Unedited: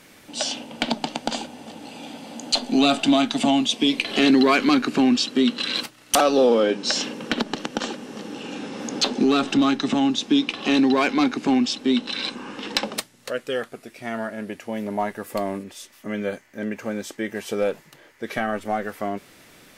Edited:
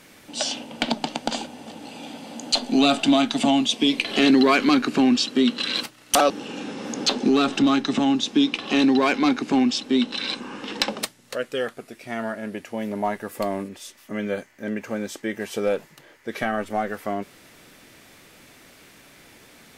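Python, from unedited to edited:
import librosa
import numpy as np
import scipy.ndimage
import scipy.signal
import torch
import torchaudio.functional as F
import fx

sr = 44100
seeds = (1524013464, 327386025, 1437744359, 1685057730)

y = fx.edit(x, sr, fx.cut(start_s=6.3, length_s=1.95), tone=tone)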